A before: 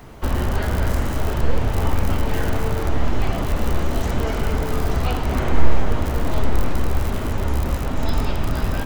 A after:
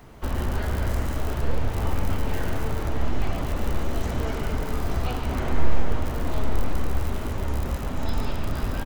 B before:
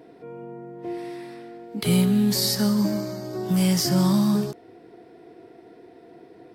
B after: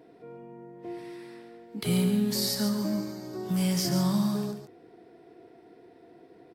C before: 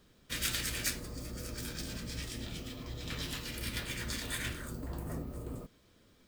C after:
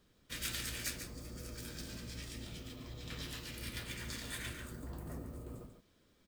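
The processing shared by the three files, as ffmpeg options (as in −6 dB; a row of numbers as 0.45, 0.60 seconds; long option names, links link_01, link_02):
-af "aecho=1:1:142:0.376,volume=-6dB"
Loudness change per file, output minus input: −5.5, −5.5, −5.5 LU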